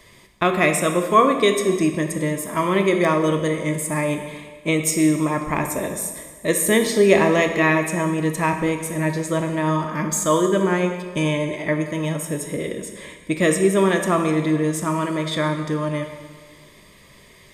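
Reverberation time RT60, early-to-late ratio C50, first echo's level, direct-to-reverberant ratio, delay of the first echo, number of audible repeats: 1.5 s, 6.5 dB, no echo audible, 4.5 dB, no echo audible, no echo audible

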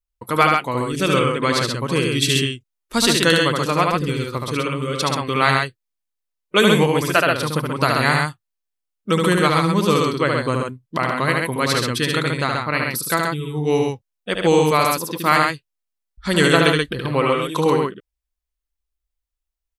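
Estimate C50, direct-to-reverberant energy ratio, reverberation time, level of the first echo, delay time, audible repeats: no reverb audible, no reverb audible, no reverb audible, −3.5 dB, 73 ms, 2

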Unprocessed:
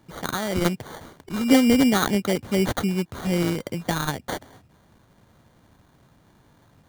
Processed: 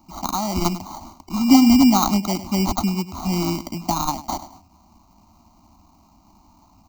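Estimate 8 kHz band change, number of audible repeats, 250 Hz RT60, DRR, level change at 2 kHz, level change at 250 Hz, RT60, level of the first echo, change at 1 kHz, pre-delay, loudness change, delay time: +4.5 dB, 1, no reverb audible, no reverb audible, −5.5 dB, +4.5 dB, no reverb audible, −14.5 dB, +6.5 dB, no reverb audible, +3.5 dB, 100 ms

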